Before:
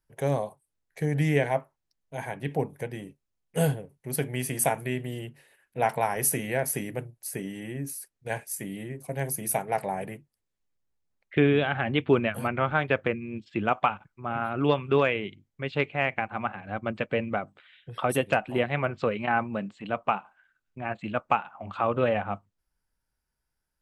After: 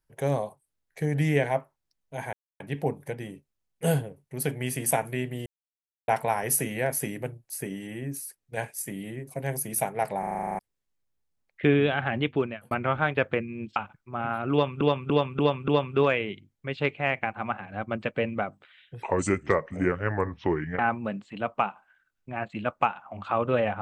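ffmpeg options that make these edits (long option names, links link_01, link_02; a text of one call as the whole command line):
ffmpeg -i in.wav -filter_complex "[0:a]asplit=22[link_01][link_02][link_03][link_04][link_05][link_06][link_07][link_08][link_09][link_10][link_11][link_12][link_13][link_14][link_15][link_16][link_17][link_18][link_19][link_20][link_21][link_22];[link_01]atrim=end=2.33,asetpts=PTS-STARTPTS,afade=type=out:start_time=2.326:duration=0.004:curve=hsin,apad=pad_dur=0.27[link_23];[link_02]atrim=start=2.33:end=5.19,asetpts=PTS-STARTPTS,afade=type=in:duration=0.004:curve=hsin,afade=type=out:start_time=2.856:duration=0.004:curve=hsin[link_24];[link_03]atrim=start=5.19:end=5.81,asetpts=PTS-STARTPTS,volume=0[link_25];[link_04]atrim=start=5.81:end=9.962,asetpts=PTS-STARTPTS,afade=type=in:duration=0.004:curve=hsin[link_26];[link_05]atrim=start=9.918:end=9.962[link_27];[link_06]atrim=start=9.918:end=9.962[link_28];[link_07]atrim=start=9.918:end=9.962[link_29];[link_08]atrim=start=9.918:end=9.962[link_30];[link_09]atrim=start=9.918:end=9.962[link_31];[link_10]atrim=start=9.918:end=9.962[link_32];[link_11]atrim=start=9.918:end=9.962[link_33];[link_12]atrim=start=9.918:end=9.962[link_34];[link_13]atrim=start=9.918:end=9.962[link_35];[link_14]atrim=start=10.318:end=12.44,asetpts=PTS-STARTPTS,afade=type=out:start_time=1.582:duration=0.54[link_36];[link_15]atrim=start=12.44:end=13.492,asetpts=PTS-STARTPTS,afade=type=in:duration=0.004:curve=hsin[link_37];[link_16]atrim=start=13.868:end=14.922[link_38];[link_17]atrim=start=14.628:end=14.922[link_39];[link_18]atrim=start=14.628:end=14.922[link_40];[link_19]atrim=start=14.628:end=14.922[link_41];[link_20]atrim=start=14.628:end=17.974[link_42];[link_21]atrim=start=17.97:end=19.28,asetpts=PTS-STARTPTS,asetrate=32634,aresample=44100[link_43];[link_22]atrim=start=19.276[link_44];[link_23][link_24][link_25][link_26]concat=n=4:v=0:a=1[link_45];[link_45][link_27]acrossfade=duration=0.004:curve1=hsin:curve2=hsin[link_46];[link_46][link_28]acrossfade=duration=0.004:curve1=hsin:curve2=hsin[link_47];[link_47][link_29]acrossfade=duration=0.004:curve1=hsin:curve2=hsin[link_48];[link_48][link_30]acrossfade=duration=0.004:curve1=hsin:curve2=hsin[link_49];[link_49][link_31]acrossfade=duration=0.004:curve1=hsin:curve2=hsin[link_50];[link_50][link_32]acrossfade=duration=0.004:curve1=hsin:curve2=hsin[link_51];[link_51][link_33]acrossfade=duration=0.004:curve1=hsin:curve2=hsin[link_52];[link_52][link_34]acrossfade=duration=0.004:curve1=hsin:curve2=hsin[link_53];[link_53][link_35]acrossfade=duration=0.004:curve1=hsin:curve2=hsin[link_54];[link_36][link_37]concat=n=2:v=0:a=1[link_55];[link_54][link_55]acrossfade=duration=0.004:curve1=hsin:curve2=hsin[link_56];[link_56][link_38]acrossfade=duration=0.004:curve1=hsin:curve2=hsin[link_57];[link_57][link_39]acrossfade=duration=0.004:curve1=hsin:curve2=hsin[link_58];[link_58][link_40]acrossfade=duration=0.004:curve1=hsin:curve2=hsin[link_59];[link_59][link_41]acrossfade=duration=0.004:curve1=hsin:curve2=hsin[link_60];[link_60][link_42]acrossfade=duration=0.004:curve1=hsin:curve2=hsin[link_61];[link_61][link_43]acrossfade=duration=0.004:curve1=hsin:curve2=hsin[link_62];[link_62][link_44]acrossfade=duration=0.004:curve1=hsin:curve2=hsin" out.wav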